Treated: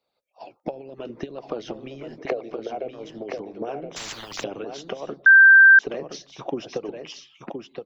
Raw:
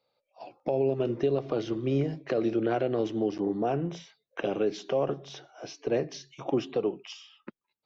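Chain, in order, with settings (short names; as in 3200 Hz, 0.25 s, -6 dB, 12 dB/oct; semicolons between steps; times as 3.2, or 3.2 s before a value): 2.18–2.91 small resonant body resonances 470/670/2200 Hz, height 18 dB, ringing for 30 ms; compressor 6:1, threshold -28 dBFS, peak gain reduction 17.5 dB; harmonic-percussive split harmonic -17 dB; echo 1.02 s -6 dB; 3.96–4.44 spectral compressor 10:1; 5.26–5.79 bleep 1570 Hz -12.5 dBFS; gain +5 dB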